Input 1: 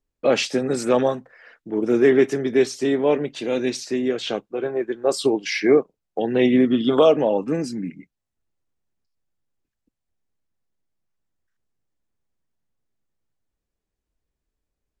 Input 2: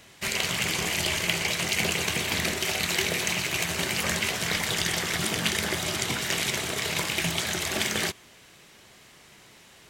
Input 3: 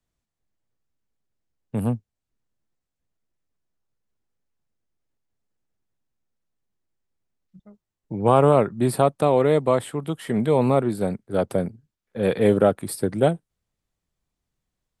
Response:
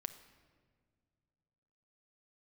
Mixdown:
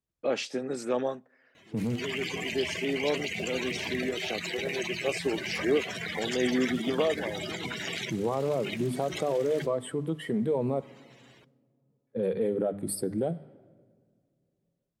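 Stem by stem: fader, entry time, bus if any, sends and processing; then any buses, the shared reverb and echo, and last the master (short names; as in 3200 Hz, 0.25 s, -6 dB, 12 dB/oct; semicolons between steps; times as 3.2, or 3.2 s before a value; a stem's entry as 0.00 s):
-11.5 dB, 0.00 s, no bus, send -23 dB, auto duck -13 dB, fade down 0.60 s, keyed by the third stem
-4.5 dB, 1.55 s, bus A, send -13 dB, limiter -16 dBFS, peak gain reduction 9 dB
-0.5 dB, 0.00 s, muted 10.81–11.89, bus A, send -9 dB, notches 50/100/150/200/250/300 Hz; compressor 6:1, threshold -22 dBFS, peak gain reduction 11 dB
bus A: 0.0 dB, spectral gate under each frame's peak -10 dB strong; limiter -24.5 dBFS, peak gain reduction 10.5 dB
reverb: on, pre-delay 6 ms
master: HPF 250 Hz 6 dB/oct; low shelf 490 Hz +4 dB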